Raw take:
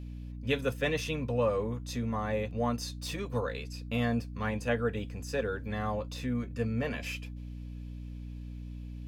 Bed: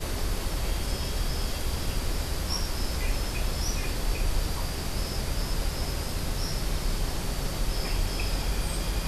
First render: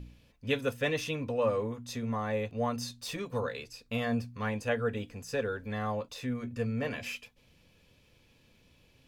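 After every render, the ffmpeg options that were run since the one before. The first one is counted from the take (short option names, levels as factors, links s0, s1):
-af "bandreject=f=60:t=h:w=4,bandreject=f=120:t=h:w=4,bandreject=f=180:t=h:w=4,bandreject=f=240:t=h:w=4,bandreject=f=300:t=h:w=4"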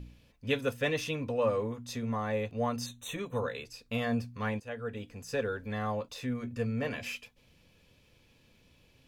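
-filter_complex "[0:a]asettb=1/sr,asplit=3[s0][s1][s2];[s0]atrim=end=2.864[s3];[s1]atrim=start=2.86:end=3.65,asetpts=PTS-STARTPTS,afade=t=in:d=0.004:c=qsin,afade=t=out:st=0.786:d=0.004:c=qsin,asuperstop=centerf=4900:order=12:qfactor=2.8[s4];[s2]atrim=start=3.646[s5];[s3][s4]acrossfade=d=0.004:c1=hsin:c2=qsin[s6];[s6][s5]acrossfade=d=0.004:c1=qsin:c2=hsin,asplit=2[s7][s8];[s7]atrim=end=4.6,asetpts=PTS-STARTPTS,afade=t=out:st=4.596:d=0.004:c=hsin:silence=0.199526[s9];[s8]atrim=start=4.6,asetpts=PTS-STARTPTS,afade=t=in:d=0.75:silence=0.199526[s10];[s9][s10]concat=n=2:v=0:a=1"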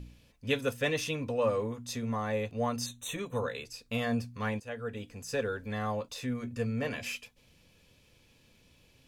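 -af "equalizer=f=8600:t=o:w=1.6:g=5"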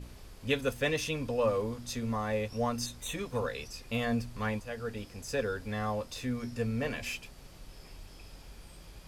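-filter_complex "[1:a]volume=0.0841[s0];[0:a][s0]amix=inputs=2:normalize=0"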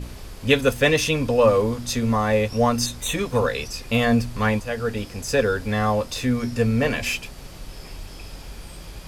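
-af "volume=3.98"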